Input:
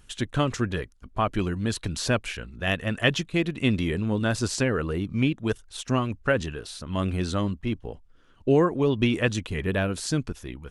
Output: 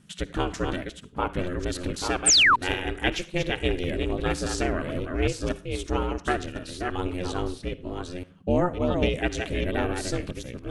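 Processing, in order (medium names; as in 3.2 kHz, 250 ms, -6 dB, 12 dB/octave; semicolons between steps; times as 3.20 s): chunks repeated in reverse 549 ms, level -5 dB; reverberation RT60 0.35 s, pre-delay 51 ms, DRR 15.5 dB; ring modulator 180 Hz; painted sound fall, 2.26–2.56 s, 890–9300 Hz -17 dBFS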